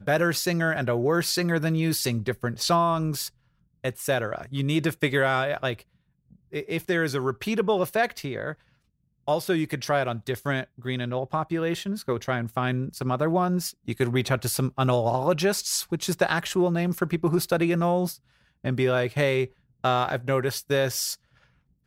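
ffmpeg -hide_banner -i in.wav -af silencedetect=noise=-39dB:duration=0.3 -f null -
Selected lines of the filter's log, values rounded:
silence_start: 3.28
silence_end: 3.84 | silence_duration: 0.56
silence_start: 5.81
silence_end: 6.53 | silence_duration: 0.72
silence_start: 8.54
silence_end: 9.28 | silence_duration: 0.74
silence_start: 18.15
silence_end: 18.64 | silence_duration: 0.49
silence_start: 19.46
silence_end: 19.84 | silence_duration: 0.38
silence_start: 21.15
silence_end: 21.86 | silence_duration: 0.71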